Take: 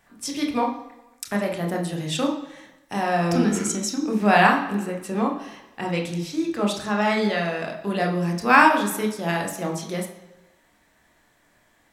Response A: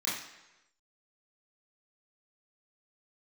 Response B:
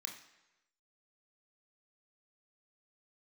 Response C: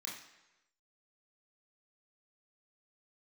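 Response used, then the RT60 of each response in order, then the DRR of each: B; 1.0, 1.0, 1.0 seconds; −9.5, 1.5, −5.0 decibels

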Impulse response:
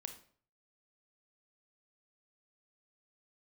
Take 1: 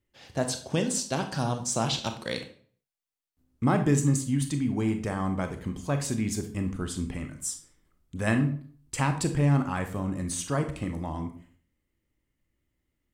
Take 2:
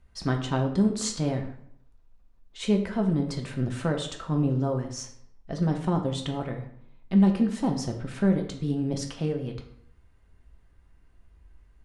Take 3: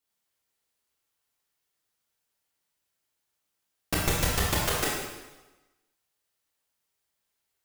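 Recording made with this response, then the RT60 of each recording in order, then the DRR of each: 1; 0.50, 0.65, 1.1 seconds; 6.0, 2.5, −4.5 decibels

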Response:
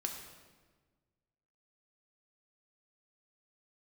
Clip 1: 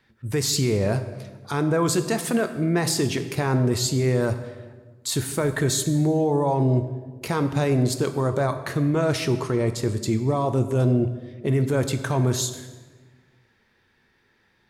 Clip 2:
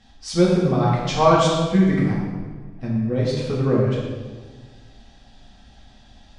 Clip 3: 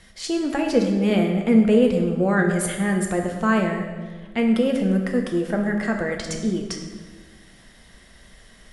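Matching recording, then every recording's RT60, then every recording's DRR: 3; 1.4, 1.4, 1.4 seconds; 8.5, −6.0, 2.0 decibels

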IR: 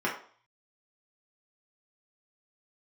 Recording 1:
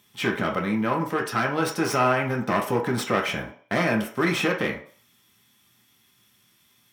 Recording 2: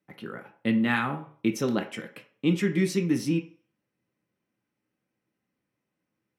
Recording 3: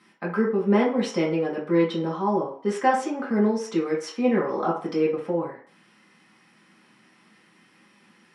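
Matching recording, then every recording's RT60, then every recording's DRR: 3; 0.45, 0.45, 0.45 seconds; −0.5, 4.0, −5.5 decibels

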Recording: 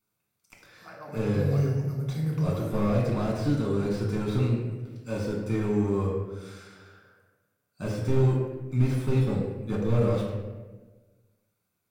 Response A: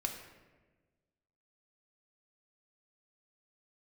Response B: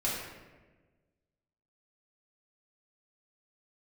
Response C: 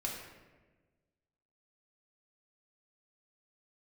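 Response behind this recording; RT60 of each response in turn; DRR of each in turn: C; 1.3, 1.3, 1.3 seconds; 3.0, −7.0, −2.0 decibels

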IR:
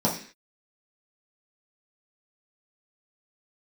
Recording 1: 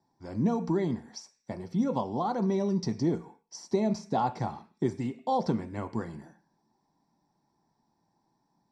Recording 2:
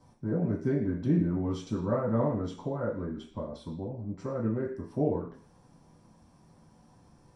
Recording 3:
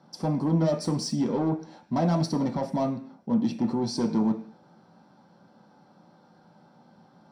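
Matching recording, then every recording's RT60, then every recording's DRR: 2; 0.45, 0.45, 0.45 seconds; 9.0, −6.0, 2.5 decibels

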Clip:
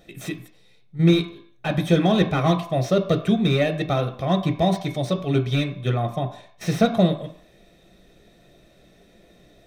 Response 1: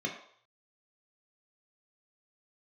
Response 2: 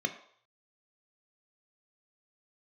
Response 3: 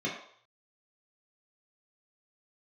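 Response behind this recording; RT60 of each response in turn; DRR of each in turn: 2; 0.60, 0.60, 0.60 seconds; −1.0, 5.5, −5.5 decibels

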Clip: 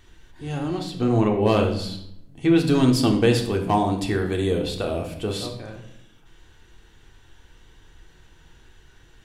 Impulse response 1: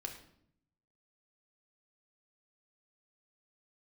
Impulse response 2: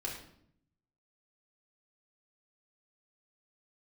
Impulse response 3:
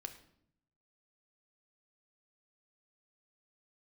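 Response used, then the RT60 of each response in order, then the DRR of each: 1; 0.65, 0.65, 0.70 seconds; 2.0, −4.0, 6.0 decibels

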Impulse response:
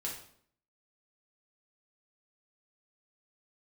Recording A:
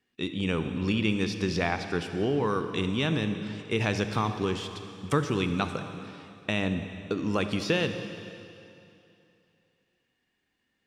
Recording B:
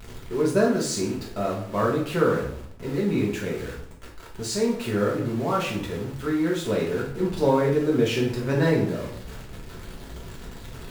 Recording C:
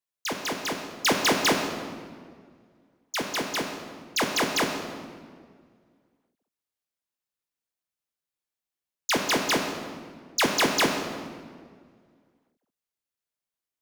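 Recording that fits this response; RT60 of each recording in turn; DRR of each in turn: B; 2.8, 0.60, 1.9 seconds; 8.0, −4.0, 2.5 decibels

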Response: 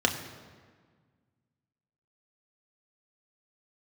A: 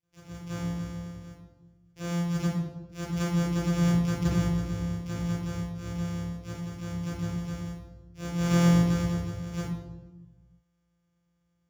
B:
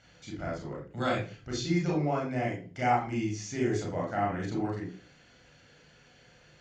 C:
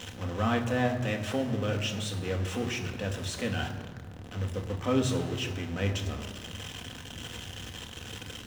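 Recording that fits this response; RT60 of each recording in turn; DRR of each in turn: C; 1.2, 0.40, 1.6 seconds; −10.0, −3.0, 2.5 decibels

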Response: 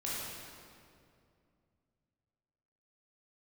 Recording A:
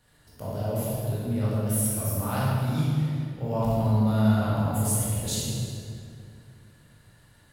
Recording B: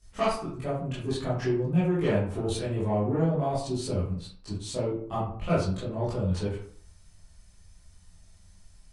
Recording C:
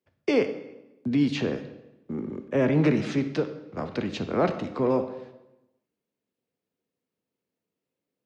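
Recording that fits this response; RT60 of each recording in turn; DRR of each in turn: A; 2.4, 0.55, 0.95 seconds; −8.0, −11.5, 9.0 decibels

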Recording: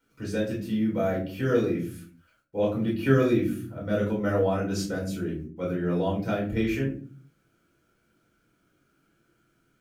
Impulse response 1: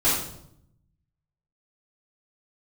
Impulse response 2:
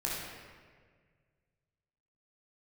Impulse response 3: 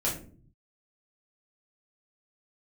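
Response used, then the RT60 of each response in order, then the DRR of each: 3; 0.75, 1.7, 0.45 seconds; −10.0, −5.5, −5.0 decibels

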